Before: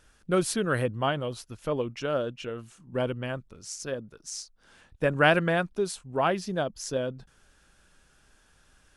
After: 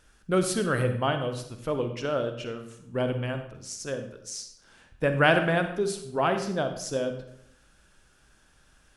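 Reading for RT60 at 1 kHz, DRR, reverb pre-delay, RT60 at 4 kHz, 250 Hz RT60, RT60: 0.70 s, 7.5 dB, 40 ms, 0.55 s, 0.95 s, 0.75 s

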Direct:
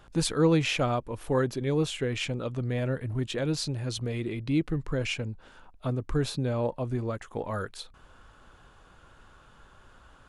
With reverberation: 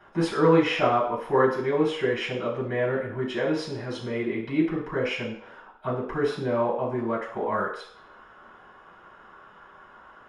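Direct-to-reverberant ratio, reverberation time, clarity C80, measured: -7.0 dB, 0.65 s, 9.0 dB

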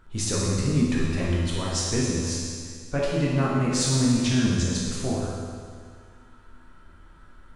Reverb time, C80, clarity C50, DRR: 2.0 s, 0.0 dB, -2.0 dB, -5.5 dB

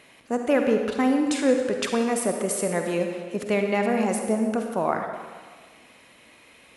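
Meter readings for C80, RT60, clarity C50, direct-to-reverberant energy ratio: 6.0 dB, 1.5 s, 4.0 dB, 4.0 dB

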